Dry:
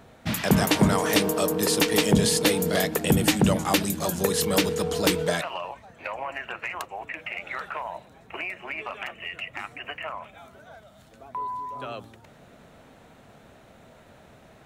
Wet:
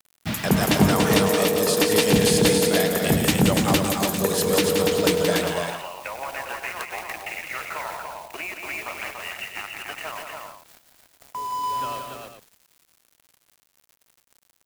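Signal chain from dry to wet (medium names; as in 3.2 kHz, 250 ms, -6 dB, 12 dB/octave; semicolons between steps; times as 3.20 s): added noise white -49 dBFS; small samples zeroed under -37 dBFS; multi-tap echo 100/175/288/400 ms -13.5/-6/-4/-10.5 dB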